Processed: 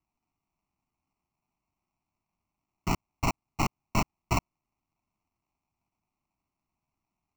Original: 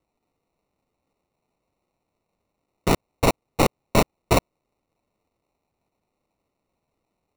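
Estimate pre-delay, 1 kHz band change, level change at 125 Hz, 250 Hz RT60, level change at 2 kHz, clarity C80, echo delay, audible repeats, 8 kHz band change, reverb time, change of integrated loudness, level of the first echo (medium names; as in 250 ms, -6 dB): no reverb, -7.0 dB, -6.0 dB, no reverb, -7.0 dB, no reverb, no echo, no echo, -8.0 dB, no reverb, -8.5 dB, no echo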